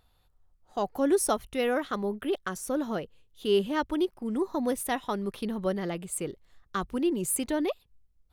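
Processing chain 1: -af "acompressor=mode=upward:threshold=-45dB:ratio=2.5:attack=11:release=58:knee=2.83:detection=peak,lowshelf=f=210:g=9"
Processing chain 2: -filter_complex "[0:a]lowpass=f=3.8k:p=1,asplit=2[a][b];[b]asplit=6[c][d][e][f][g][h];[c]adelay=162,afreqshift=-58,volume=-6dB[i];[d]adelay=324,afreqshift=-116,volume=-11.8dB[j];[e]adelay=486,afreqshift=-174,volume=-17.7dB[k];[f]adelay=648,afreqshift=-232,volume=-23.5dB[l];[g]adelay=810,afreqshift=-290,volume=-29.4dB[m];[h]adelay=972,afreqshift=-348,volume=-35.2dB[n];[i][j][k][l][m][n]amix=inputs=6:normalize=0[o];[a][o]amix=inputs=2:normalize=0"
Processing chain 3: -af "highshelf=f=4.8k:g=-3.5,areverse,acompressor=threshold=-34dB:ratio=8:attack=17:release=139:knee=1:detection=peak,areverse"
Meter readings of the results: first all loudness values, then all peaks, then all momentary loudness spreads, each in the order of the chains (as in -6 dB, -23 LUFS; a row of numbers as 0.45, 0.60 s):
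-28.0, -29.5, -37.5 LUFS; -12.0, -11.5, -23.0 dBFS; 9, 10, 6 LU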